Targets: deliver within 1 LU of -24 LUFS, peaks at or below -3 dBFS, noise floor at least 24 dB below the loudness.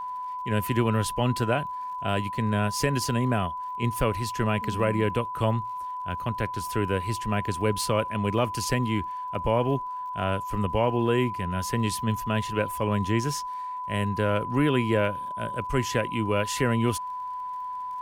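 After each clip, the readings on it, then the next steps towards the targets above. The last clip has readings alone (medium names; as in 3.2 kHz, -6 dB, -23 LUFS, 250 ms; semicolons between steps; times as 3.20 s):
tick rate 50 per s; steady tone 1 kHz; tone level -31 dBFS; loudness -27.0 LUFS; peak level -10.5 dBFS; loudness target -24.0 LUFS
-> de-click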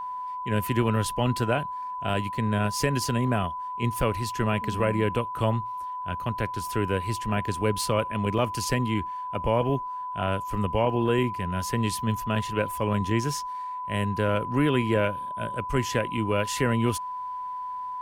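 tick rate 0.33 per s; steady tone 1 kHz; tone level -31 dBFS
-> band-stop 1 kHz, Q 30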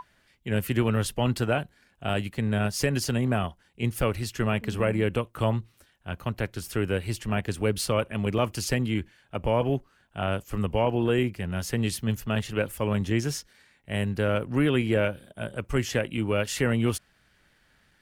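steady tone not found; loudness -28.0 LUFS; peak level -11.5 dBFS; loudness target -24.0 LUFS
-> trim +4 dB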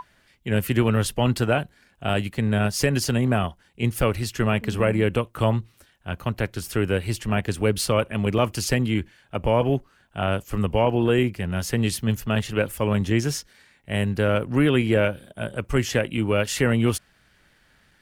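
loudness -24.0 LUFS; peak level -7.5 dBFS; noise floor -61 dBFS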